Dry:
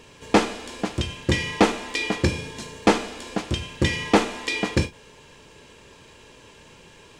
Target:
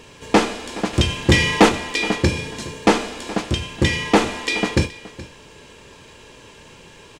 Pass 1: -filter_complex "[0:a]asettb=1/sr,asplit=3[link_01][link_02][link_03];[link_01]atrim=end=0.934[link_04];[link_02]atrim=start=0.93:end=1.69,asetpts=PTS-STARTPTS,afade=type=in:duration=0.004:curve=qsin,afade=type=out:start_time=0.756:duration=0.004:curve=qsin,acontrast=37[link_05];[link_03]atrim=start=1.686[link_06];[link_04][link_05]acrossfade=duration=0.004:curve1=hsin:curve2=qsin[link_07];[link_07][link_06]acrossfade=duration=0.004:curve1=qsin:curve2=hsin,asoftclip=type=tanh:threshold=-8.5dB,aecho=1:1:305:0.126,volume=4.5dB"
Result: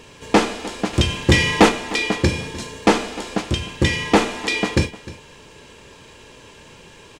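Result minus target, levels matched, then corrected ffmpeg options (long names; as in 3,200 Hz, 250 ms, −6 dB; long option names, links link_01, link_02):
echo 116 ms early
-filter_complex "[0:a]asettb=1/sr,asplit=3[link_01][link_02][link_03];[link_01]atrim=end=0.934[link_04];[link_02]atrim=start=0.93:end=1.69,asetpts=PTS-STARTPTS,afade=type=in:duration=0.004:curve=qsin,afade=type=out:start_time=0.756:duration=0.004:curve=qsin,acontrast=37[link_05];[link_03]atrim=start=1.686[link_06];[link_04][link_05]acrossfade=duration=0.004:curve1=hsin:curve2=qsin[link_07];[link_07][link_06]acrossfade=duration=0.004:curve1=qsin:curve2=hsin,asoftclip=type=tanh:threshold=-8.5dB,aecho=1:1:421:0.126,volume=4.5dB"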